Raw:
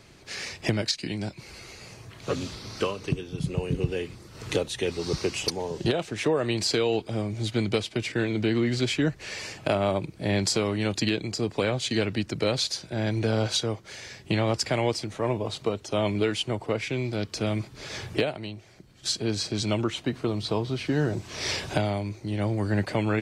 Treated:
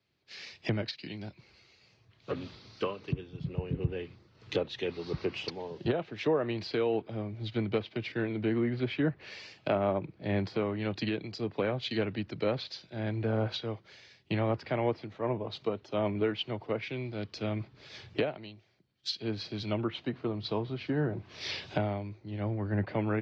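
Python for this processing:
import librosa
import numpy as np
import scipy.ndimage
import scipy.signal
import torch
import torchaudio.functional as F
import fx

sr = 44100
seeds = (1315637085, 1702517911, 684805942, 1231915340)

y = scipy.signal.sosfilt(scipy.signal.butter(2, 81.0, 'highpass', fs=sr, output='sos'), x)
y = fx.env_lowpass_down(y, sr, base_hz=2100.0, full_db=-21.5)
y = scipy.signal.sosfilt(scipy.signal.butter(4, 4700.0, 'lowpass', fs=sr, output='sos'), y)
y = fx.band_widen(y, sr, depth_pct=70)
y = y * librosa.db_to_amplitude(-5.0)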